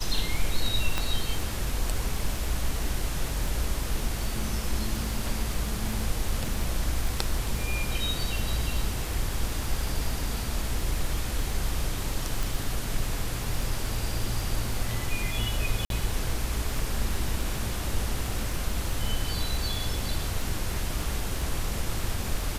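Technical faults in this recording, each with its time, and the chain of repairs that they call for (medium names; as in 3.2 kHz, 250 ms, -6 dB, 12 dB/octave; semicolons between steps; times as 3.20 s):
crackle 39 per s -32 dBFS
0.98 s: pop -11 dBFS
12.43 s: pop
15.85–15.90 s: dropout 52 ms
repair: de-click; interpolate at 15.85 s, 52 ms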